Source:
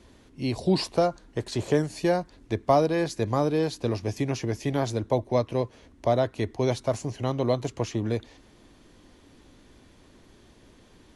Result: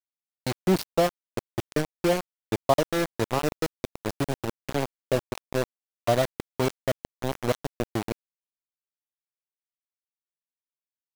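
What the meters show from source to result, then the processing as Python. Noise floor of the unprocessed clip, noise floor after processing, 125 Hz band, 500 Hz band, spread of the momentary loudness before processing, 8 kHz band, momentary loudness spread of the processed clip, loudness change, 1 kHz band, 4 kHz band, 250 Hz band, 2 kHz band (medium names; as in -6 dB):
-56 dBFS, under -85 dBFS, -3.5 dB, -1.5 dB, 8 LU, +2.0 dB, 10 LU, -1.5 dB, -1.0 dB, +0.5 dB, -2.0 dB, +3.0 dB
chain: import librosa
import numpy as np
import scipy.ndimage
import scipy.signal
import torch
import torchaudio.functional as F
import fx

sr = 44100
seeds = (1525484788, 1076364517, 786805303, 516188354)

y = fx.spec_dropout(x, sr, seeds[0], share_pct=30)
y = np.where(np.abs(y) >= 10.0 ** (-24.0 / 20.0), y, 0.0)
y = F.gain(torch.from_numpy(y), 1.0).numpy()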